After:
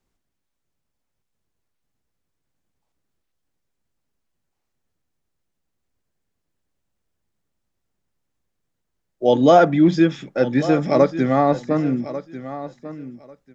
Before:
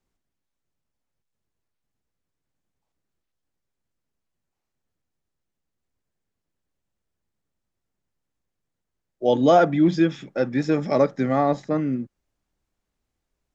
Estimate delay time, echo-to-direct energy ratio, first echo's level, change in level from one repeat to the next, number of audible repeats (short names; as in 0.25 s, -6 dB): 1.144 s, -14.0 dB, -14.0 dB, -15.5 dB, 2